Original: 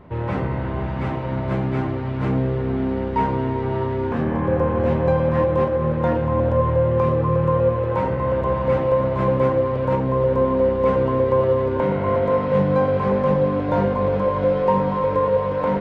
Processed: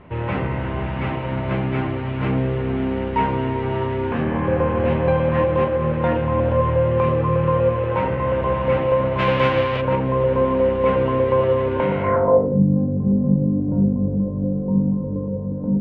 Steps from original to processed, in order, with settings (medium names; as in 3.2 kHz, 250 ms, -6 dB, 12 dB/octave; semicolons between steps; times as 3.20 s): 9.18–9.80 s: formants flattened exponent 0.6; low-pass sweep 2.8 kHz -> 230 Hz, 12.01–12.61 s; 13.21–13.88 s: tape noise reduction on one side only encoder only